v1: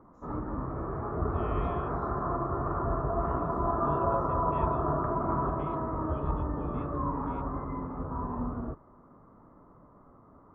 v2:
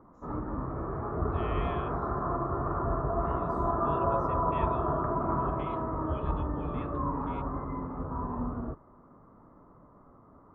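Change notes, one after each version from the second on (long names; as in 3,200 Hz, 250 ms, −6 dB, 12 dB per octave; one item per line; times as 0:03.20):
second voice: add tilt shelving filter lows −9 dB, about 640 Hz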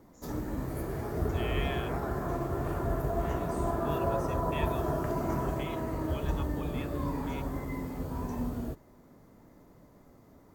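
background: remove low-pass with resonance 1,200 Hz, resonance Q 5.7
master: remove head-to-tape spacing loss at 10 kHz 29 dB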